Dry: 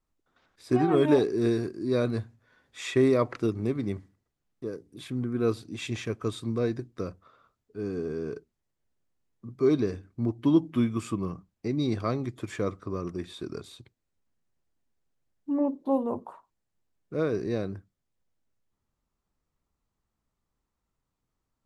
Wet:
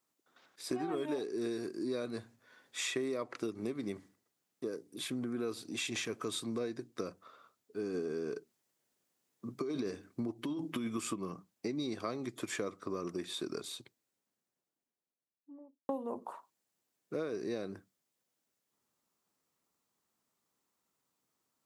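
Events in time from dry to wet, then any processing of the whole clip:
5.13–6.61 s: transient shaper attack -4 dB, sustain +3 dB
7.94–11.14 s: compressor with a negative ratio -27 dBFS
13.70–15.89 s: studio fade out
whole clip: high-pass 230 Hz 12 dB/octave; treble shelf 4.3 kHz +8.5 dB; compression 6:1, threshold -35 dBFS; trim +1 dB

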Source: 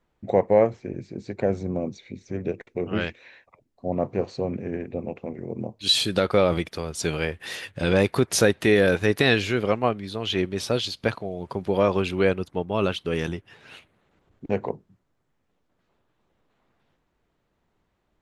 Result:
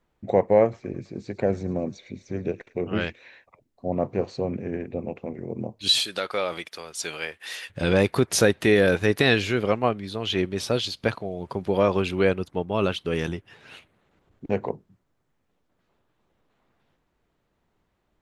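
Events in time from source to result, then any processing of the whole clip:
0.62–2.78 s: feedback echo behind a high-pass 108 ms, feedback 65%, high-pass 1.5 kHz, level -16 dB
6.00–7.70 s: high-pass 1.2 kHz 6 dB/octave

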